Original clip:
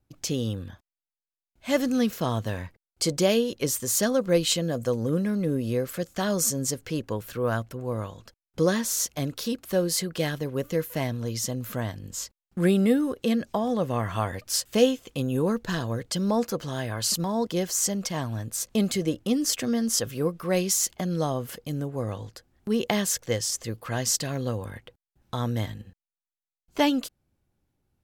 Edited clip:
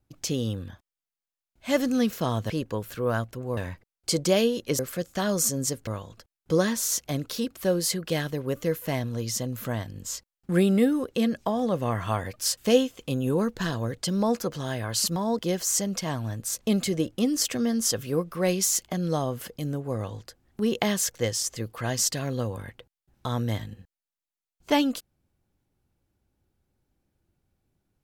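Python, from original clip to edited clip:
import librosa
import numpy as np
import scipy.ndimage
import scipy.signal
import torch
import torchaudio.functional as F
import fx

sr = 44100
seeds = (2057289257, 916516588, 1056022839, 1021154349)

y = fx.edit(x, sr, fx.cut(start_s=3.72, length_s=2.08),
    fx.move(start_s=6.88, length_s=1.07, to_s=2.5), tone=tone)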